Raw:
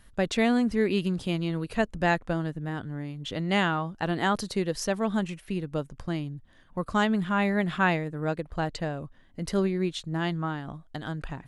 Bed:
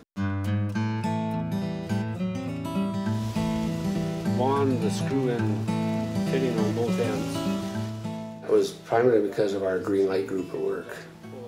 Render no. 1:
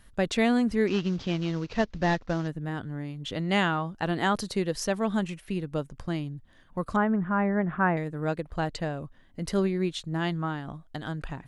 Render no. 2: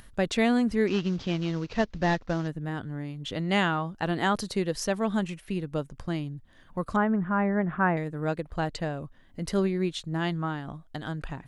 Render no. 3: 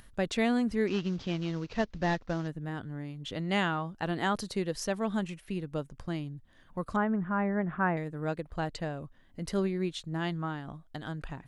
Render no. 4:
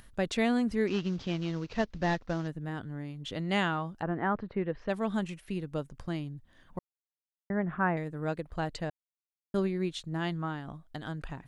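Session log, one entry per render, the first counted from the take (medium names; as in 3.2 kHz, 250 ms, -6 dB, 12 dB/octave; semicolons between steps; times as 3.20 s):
0.87–2.48 s: CVSD coder 32 kbps; 6.96–7.97 s: low-pass 1.7 kHz 24 dB/octave
upward compressor, threshold -45 dBFS
trim -4 dB
4.01–4.88 s: low-pass 1.6 kHz -> 2.6 kHz 24 dB/octave; 6.79–7.50 s: mute; 8.90–9.54 s: mute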